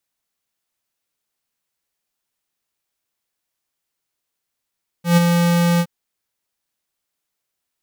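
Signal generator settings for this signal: ADSR square 172 Hz, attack 129 ms, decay 21 ms, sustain -5 dB, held 0.76 s, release 58 ms -10.5 dBFS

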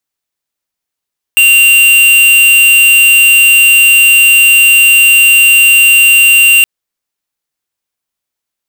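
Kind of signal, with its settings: tone square 2.77 kHz -5 dBFS 5.27 s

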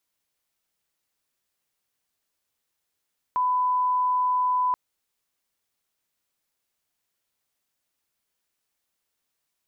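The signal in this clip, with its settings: line-up tone -20 dBFS 1.38 s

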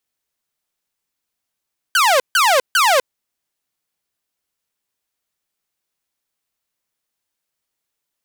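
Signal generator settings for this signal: burst of laser zaps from 1.6 kHz, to 490 Hz, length 0.25 s saw, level -8.5 dB, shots 3, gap 0.15 s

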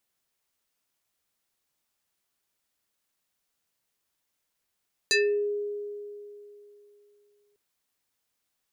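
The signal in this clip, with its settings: FM tone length 2.45 s, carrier 412 Hz, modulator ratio 5.34, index 3.5, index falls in 0.36 s exponential, decay 3.01 s, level -18.5 dB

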